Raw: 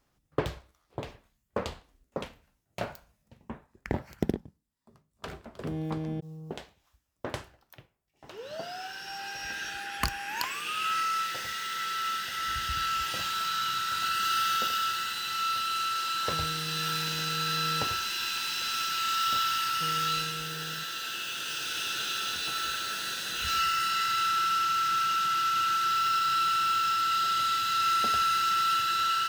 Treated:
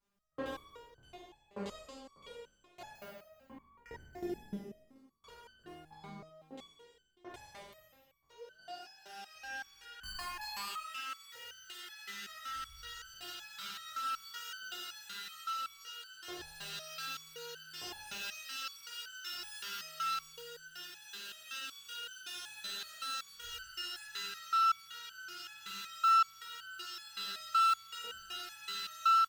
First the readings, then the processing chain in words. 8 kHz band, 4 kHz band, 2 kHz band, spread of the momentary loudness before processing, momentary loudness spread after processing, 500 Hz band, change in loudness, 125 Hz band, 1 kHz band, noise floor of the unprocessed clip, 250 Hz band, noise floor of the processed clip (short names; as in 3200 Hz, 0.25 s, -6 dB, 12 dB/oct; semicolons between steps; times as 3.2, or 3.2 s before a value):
-12.0 dB, -11.5 dB, -12.0 dB, 15 LU, 20 LU, -10.0 dB, -10.5 dB, -19.5 dB, -9.0 dB, -74 dBFS, -11.0 dB, -68 dBFS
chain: spectral trails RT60 1.47 s; outdoor echo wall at 15 m, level -8 dB; stepped resonator 5.3 Hz 200–1500 Hz